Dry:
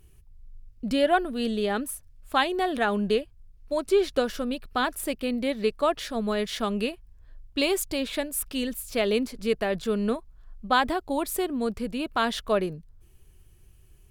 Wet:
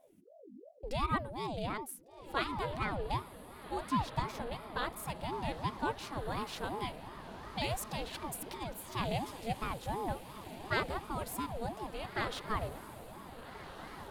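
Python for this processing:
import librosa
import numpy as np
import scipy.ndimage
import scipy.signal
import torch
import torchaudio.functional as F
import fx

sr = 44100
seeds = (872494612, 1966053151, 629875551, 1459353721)

y = fx.over_compress(x, sr, threshold_db=-33.0, ratio=-0.5, at=(8.14, 8.6), fade=0.02)
y = fx.echo_diffused(y, sr, ms=1560, feedback_pct=55, wet_db=-11)
y = fx.ring_lfo(y, sr, carrier_hz=440.0, swing_pct=50, hz=2.8)
y = F.gain(torch.from_numpy(y), -8.0).numpy()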